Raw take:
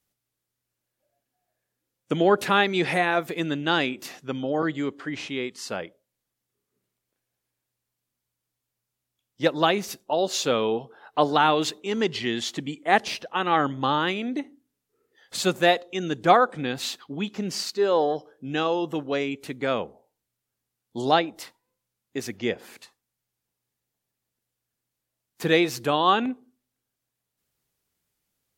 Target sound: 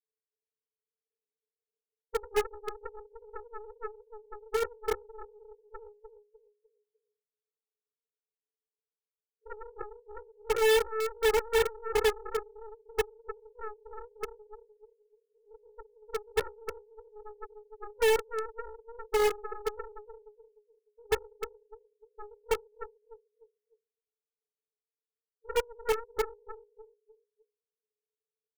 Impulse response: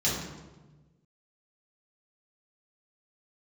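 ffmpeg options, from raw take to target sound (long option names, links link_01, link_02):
-filter_complex "[0:a]asuperpass=centerf=450:order=20:qfactor=6.5,aecho=1:1:7.2:0.63,aecho=1:1:301|602|903|1204:0.447|0.147|0.0486|0.0161,aeval=exprs='0.126*(cos(1*acos(clip(val(0)/0.126,-1,1)))-cos(1*PI/2))+0.000891*(cos(3*acos(clip(val(0)/0.126,-1,1)))-cos(3*PI/2))+0.0398*(cos(6*acos(clip(val(0)/0.126,-1,1)))-cos(6*PI/2))+0.0251*(cos(7*acos(clip(val(0)/0.126,-1,1)))-cos(7*PI/2))+0.0316*(cos(8*acos(clip(val(0)/0.126,-1,1)))-cos(8*PI/2))':channel_layout=same,asplit=2[link_01][link_02];[link_02]aeval=exprs='(mod(22.4*val(0)+1,2)-1)/22.4':channel_layout=same,volume=-4dB[link_03];[link_01][link_03]amix=inputs=2:normalize=0"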